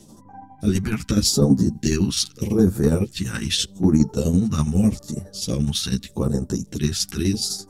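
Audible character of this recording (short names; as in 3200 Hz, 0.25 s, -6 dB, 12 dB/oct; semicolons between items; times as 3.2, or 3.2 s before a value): phasing stages 2, 0.82 Hz, lowest notch 470–2700 Hz; tremolo saw down 12 Hz, depth 65%; a shimmering, thickened sound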